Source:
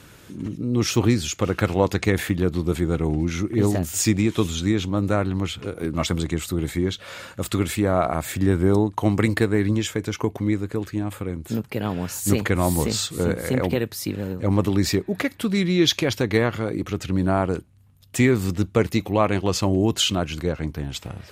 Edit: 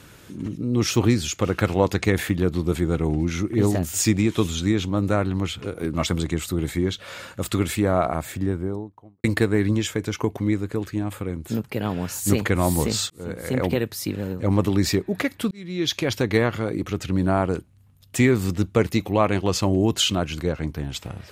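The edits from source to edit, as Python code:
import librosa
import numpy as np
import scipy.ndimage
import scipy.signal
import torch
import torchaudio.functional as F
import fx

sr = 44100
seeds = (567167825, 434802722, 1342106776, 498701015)

y = fx.studio_fade_out(x, sr, start_s=7.86, length_s=1.38)
y = fx.edit(y, sr, fx.fade_in_span(start_s=13.1, length_s=0.54),
    fx.fade_in_span(start_s=15.51, length_s=0.66), tone=tone)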